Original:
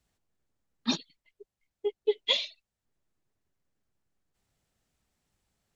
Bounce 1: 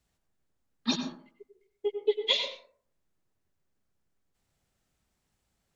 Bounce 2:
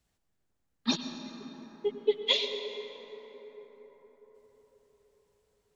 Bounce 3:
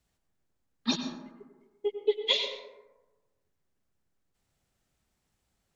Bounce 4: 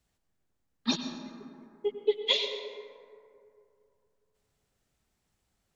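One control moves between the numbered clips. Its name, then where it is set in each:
plate-style reverb, RT60: 0.54 s, 5.3 s, 1.2 s, 2.6 s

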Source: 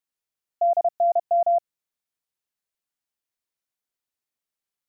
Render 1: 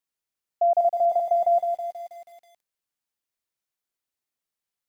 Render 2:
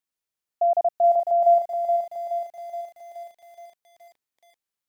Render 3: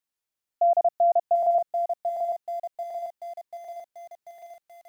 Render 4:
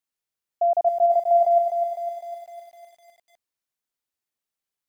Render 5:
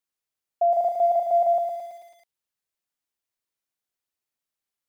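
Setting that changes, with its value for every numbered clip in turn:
bit-crushed delay, time: 161 ms, 423 ms, 739 ms, 253 ms, 110 ms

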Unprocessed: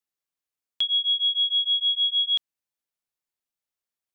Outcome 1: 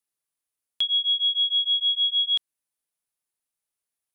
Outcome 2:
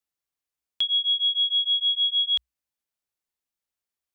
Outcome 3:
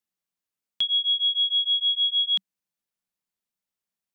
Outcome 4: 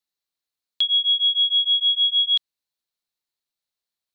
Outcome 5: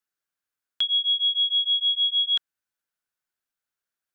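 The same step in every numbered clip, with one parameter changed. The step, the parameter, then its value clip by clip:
peaking EQ, frequency: 10 kHz, 61 Hz, 190 Hz, 4.1 kHz, 1.5 kHz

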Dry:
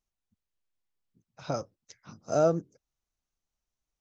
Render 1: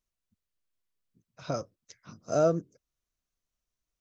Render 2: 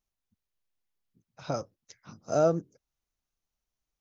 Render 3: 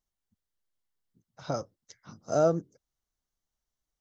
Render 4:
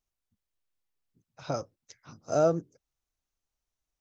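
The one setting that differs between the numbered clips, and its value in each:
band-stop, frequency: 830 Hz, 8 kHz, 2.5 kHz, 200 Hz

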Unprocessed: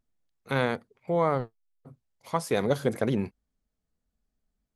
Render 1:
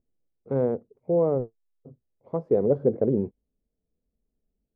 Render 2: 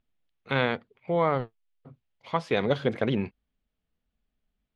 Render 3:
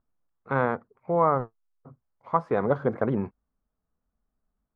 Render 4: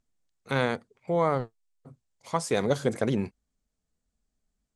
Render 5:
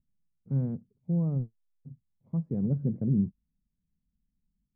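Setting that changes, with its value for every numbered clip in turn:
resonant low-pass, frequency: 460 Hz, 3.1 kHz, 1.2 kHz, 7.9 kHz, 180 Hz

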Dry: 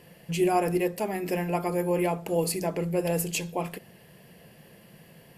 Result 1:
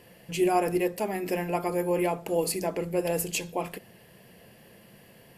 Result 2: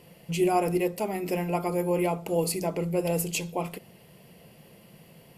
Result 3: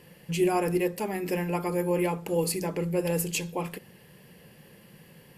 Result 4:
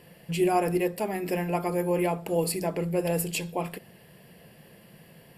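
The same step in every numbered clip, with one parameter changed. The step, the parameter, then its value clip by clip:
band-stop, frequency: 160 Hz, 1.7 kHz, 670 Hz, 6.3 kHz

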